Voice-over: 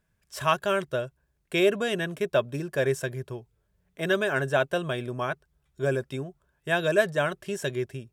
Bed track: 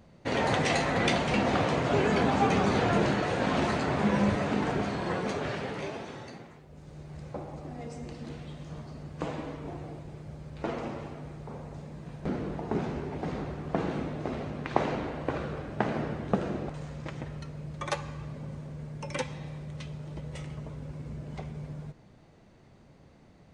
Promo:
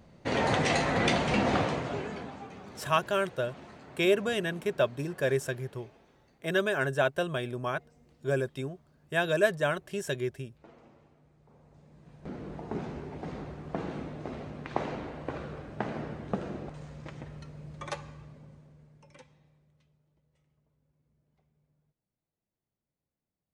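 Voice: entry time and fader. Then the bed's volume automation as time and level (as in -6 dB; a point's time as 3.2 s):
2.45 s, -2.5 dB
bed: 1.57 s 0 dB
2.5 s -21.5 dB
11.33 s -21.5 dB
12.58 s -5 dB
17.91 s -5 dB
20.22 s -34.5 dB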